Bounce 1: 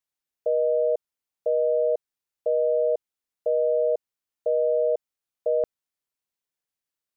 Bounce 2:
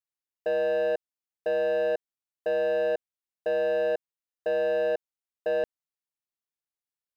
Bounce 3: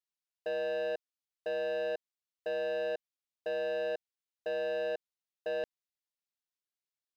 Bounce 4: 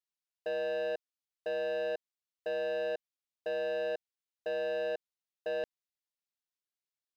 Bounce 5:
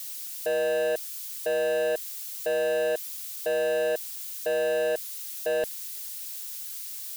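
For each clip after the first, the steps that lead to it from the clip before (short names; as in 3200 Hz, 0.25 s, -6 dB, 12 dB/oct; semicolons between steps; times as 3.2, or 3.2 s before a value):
sample leveller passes 2; gain -5.5 dB
bell 4000 Hz +8 dB 2 oct; gain -8.5 dB
nothing audible
switching spikes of -37.5 dBFS; gain +8 dB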